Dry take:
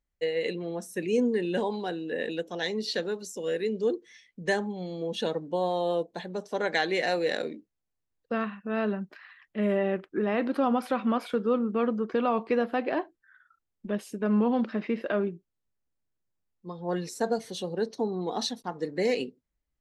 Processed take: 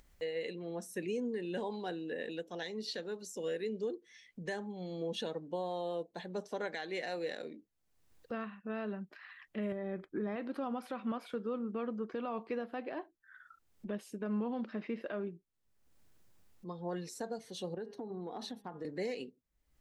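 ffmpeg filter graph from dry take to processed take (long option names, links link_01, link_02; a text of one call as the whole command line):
ffmpeg -i in.wav -filter_complex "[0:a]asettb=1/sr,asplit=3[link_01][link_02][link_03];[link_01]atrim=end=9.724[link_04];[link_02]atrim=start=9.72:end=10.36,asetpts=PTS-STARTPTS,afade=type=in:duration=0.004:curve=qsin,afade=type=out:start_time=0.636:duration=0.004:curve=qsin,lowshelf=frequency=240:gain=8,acompressor=threshold=-31dB:ratio=2:attack=3.2:release=140:knee=1:detection=peak,asuperstop=centerf=2800:order=12:qfactor=6[link_05];[link_03]atrim=start=10.356[link_06];[link_04][link_05]acrossfade=duration=0.004:curve1=hsin:curve2=qsin[link_07];[link_07][link_06]acrossfade=duration=0.004:curve1=qsin:curve2=hsin,asettb=1/sr,asplit=3[link_08][link_09][link_10];[link_08]atrim=end=17.744[link_11];[link_09]atrim=start=17.74:end=18.85,asetpts=PTS-STARTPTS,afade=type=in:duration=0.004:curve=qsin,afade=type=out:start_time=1.106:duration=0.004:curve=qsin,equalizer=frequency=6100:width_type=o:width=1.7:gain=-11.5,bandreject=frequency=204.1:width_type=h:width=4,bandreject=frequency=408.2:width_type=h:width=4,bandreject=frequency=612.3:width_type=h:width=4,bandreject=frequency=816.4:width_type=h:width=4,bandreject=frequency=1020.5:width_type=h:width=4,bandreject=frequency=1224.6:width_type=h:width=4,bandreject=frequency=1428.7:width_type=h:width=4,bandreject=frequency=1632.8:width_type=h:width=4,bandreject=frequency=1836.9:width_type=h:width=4,bandreject=frequency=2041:width_type=h:width=4,bandreject=frequency=2245.1:width_type=h:width=4,bandreject=frequency=2449.2:width_type=h:width=4,bandreject=frequency=2653.3:width_type=h:width=4,bandreject=frequency=2857.4:width_type=h:width=4,bandreject=frequency=3061.5:width_type=h:width=4,bandreject=frequency=3265.6:width_type=h:width=4,bandreject=frequency=3469.7:width_type=h:width=4,acompressor=threshold=-33dB:ratio=12:attack=3.2:release=140:knee=1:detection=peak[link_12];[link_10]atrim=start=18.846[link_13];[link_11][link_12]acrossfade=duration=0.004:curve1=hsin:curve2=qsin[link_14];[link_14][link_13]acrossfade=duration=0.004:curve1=qsin:curve2=hsin,alimiter=limit=-24dB:level=0:latency=1:release=464,acompressor=mode=upward:threshold=-41dB:ratio=2.5,volume=-4.5dB" out.wav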